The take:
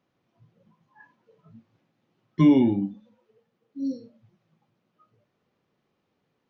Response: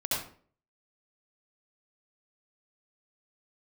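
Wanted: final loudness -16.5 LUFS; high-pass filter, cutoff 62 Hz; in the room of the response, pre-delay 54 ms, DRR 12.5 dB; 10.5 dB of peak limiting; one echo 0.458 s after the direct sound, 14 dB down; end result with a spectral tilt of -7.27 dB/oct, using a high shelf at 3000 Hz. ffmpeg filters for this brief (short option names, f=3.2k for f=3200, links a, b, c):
-filter_complex "[0:a]highpass=62,highshelf=f=3k:g=-5.5,alimiter=limit=-19dB:level=0:latency=1,aecho=1:1:458:0.2,asplit=2[a][b];[1:a]atrim=start_sample=2205,adelay=54[c];[b][c]afir=irnorm=-1:irlink=0,volume=-20dB[d];[a][d]amix=inputs=2:normalize=0,volume=14.5dB"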